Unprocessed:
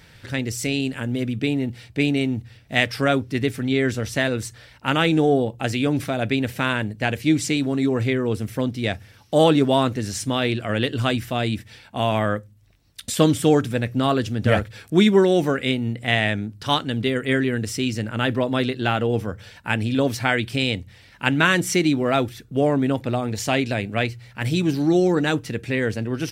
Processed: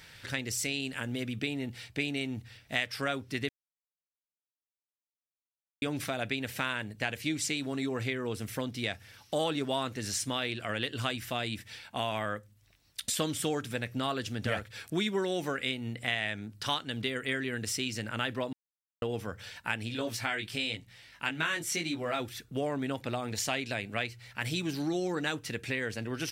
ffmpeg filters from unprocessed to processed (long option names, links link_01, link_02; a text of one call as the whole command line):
ffmpeg -i in.wav -filter_complex "[0:a]asplit=3[link_01][link_02][link_03];[link_01]afade=type=out:start_time=19.88:duration=0.02[link_04];[link_02]flanger=delay=17.5:depth=2:speed=1,afade=type=in:start_time=19.88:duration=0.02,afade=type=out:start_time=22.19:duration=0.02[link_05];[link_03]afade=type=in:start_time=22.19:duration=0.02[link_06];[link_04][link_05][link_06]amix=inputs=3:normalize=0,asplit=5[link_07][link_08][link_09][link_10][link_11];[link_07]atrim=end=3.49,asetpts=PTS-STARTPTS,afade=type=out:start_time=3.486:duration=0.004:curve=hsin[link_12];[link_08]atrim=start=3.49:end=5.82,asetpts=PTS-STARTPTS,volume=0[link_13];[link_09]atrim=start=5.82:end=18.53,asetpts=PTS-STARTPTS,afade=type=in:duration=0.004:curve=hsin,afade=type=out:start_time=12.706:duration=0.004:curve=hsin[link_14];[link_10]atrim=start=18.53:end=19.02,asetpts=PTS-STARTPTS,volume=0[link_15];[link_11]atrim=start=19.02,asetpts=PTS-STARTPTS,afade=type=in:duration=0.004:curve=hsin[link_16];[link_12][link_13][link_14][link_15][link_16]concat=n=5:v=0:a=1,tiltshelf=frequency=750:gain=-5,acompressor=threshold=-27dB:ratio=2.5,volume=-4.5dB" out.wav